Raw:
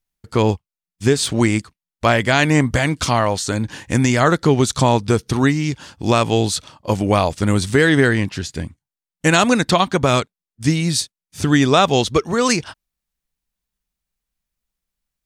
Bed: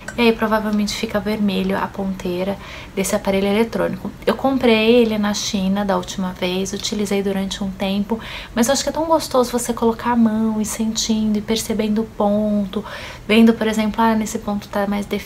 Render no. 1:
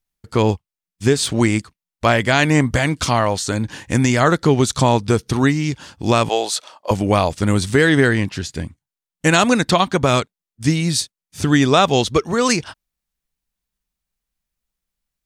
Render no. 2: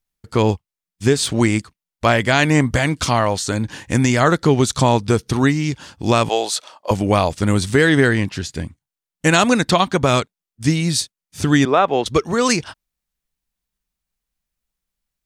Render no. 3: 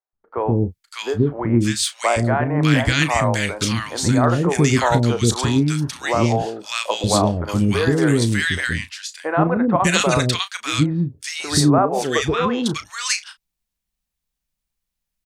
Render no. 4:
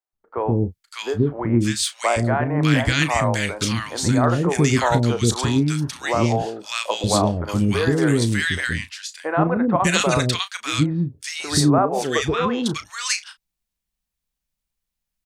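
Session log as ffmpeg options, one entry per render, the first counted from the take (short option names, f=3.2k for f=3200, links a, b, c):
-filter_complex "[0:a]asettb=1/sr,asplit=3[a][b][c];[a]atrim=end=6.294[d];[b]atrim=start=6.29:end=6.91,asetpts=PTS-STARTPTS,afade=t=in:d=0.004:c=qsin,afade=t=out:st=0.616:d=0.004:c=qsin,highpass=f=610:t=q:w=1.6[e];[c]atrim=start=6.906[f];[d][e]acrossfade=d=0.004:c1=hsin:c2=qsin[g];[g][f]acrossfade=d=0.004:c1=qsin:c2=hsin"
-filter_complex "[0:a]asettb=1/sr,asplit=3[a][b][c];[a]atrim=end=11.654[d];[b]atrim=start=11.65:end=12.06,asetpts=PTS-STARTPTS,afade=t=in:d=0.004:c=qsin,afade=t=out:st=0.406:d=0.004:c=qsin,acrossover=split=280 2500:gain=0.224 1 0.0708[e][f][g];[e][f][g]amix=inputs=3:normalize=0[h];[c]atrim=start=12.056[i];[d][h]acrossfade=d=0.004:c1=hsin:c2=qsin[j];[j][i]acrossfade=d=0.004:c1=qsin:c2=hsin"
-filter_complex "[0:a]asplit=2[a][b];[b]adelay=34,volume=-12dB[c];[a][c]amix=inputs=2:normalize=0,acrossover=split=430|1400[d][e][f];[d]adelay=130[g];[f]adelay=600[h];[g][e][h]amix=inputs=3:normalize=0"
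-af "volume=-1.5dB"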